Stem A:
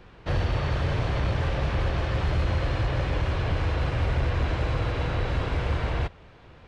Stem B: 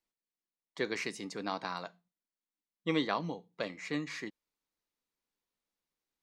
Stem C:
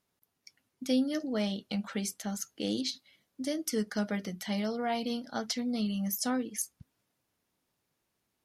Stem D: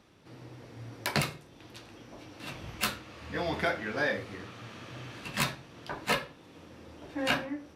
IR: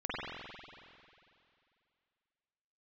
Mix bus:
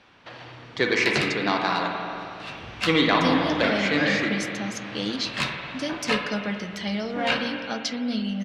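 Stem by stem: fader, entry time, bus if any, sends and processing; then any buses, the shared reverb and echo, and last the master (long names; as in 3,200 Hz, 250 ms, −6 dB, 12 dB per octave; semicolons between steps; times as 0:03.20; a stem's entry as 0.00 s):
−5.5 dB, 0.00 s, send −14 dB, high-pass filter 540 Hz 24 dB per octave; downward compressor, threshold −38 dBFS, peak gain reduction 7.5 dB; automatic ducking −14 dB, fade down 0.35 s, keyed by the second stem
+3.0 dB, 0.00 s, send −3.5 dB, leveller curve on the samples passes 1
+1.0 dB, 2.35 s, send −12.5 dB, no processing
−2.5 dB, 0.00 s, send −7.5 dB, no processing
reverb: on, RT60 2.5 s, pre-delay 45 ms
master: low-pass filter 3,700 Hz 12 dB per octave; high-shelf EQ 2,400 Hz +11 dB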